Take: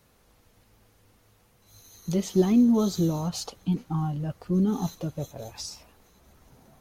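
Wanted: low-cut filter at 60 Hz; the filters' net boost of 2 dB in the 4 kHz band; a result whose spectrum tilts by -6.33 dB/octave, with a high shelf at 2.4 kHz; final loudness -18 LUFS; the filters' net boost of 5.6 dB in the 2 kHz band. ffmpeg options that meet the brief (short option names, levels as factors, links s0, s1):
-af "highpass=60,equalizer=f=2000:t=o:g=8.5,highshelf=f=2400:g=-7,equalizer=f=4000:t=o:g=7,volume=2.66"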